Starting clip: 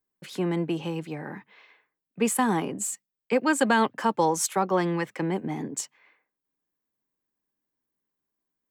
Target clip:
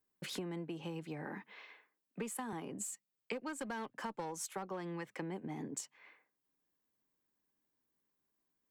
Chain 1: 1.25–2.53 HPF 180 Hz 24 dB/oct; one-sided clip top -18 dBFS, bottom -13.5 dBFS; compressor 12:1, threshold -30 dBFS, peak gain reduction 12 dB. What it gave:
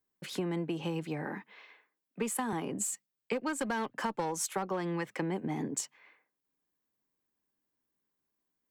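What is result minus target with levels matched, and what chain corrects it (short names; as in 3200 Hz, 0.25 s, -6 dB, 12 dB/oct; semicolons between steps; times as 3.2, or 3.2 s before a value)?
compressor: peak gain reduction -8 dB
1.25–2.53 HPF 180 Hz 24 dB/oct; one-sided clip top -18 dBFS, bottom -13.5 dBFS; compressor 12:1, threshold -39 dBFS, peak gain reduction 20.5 dB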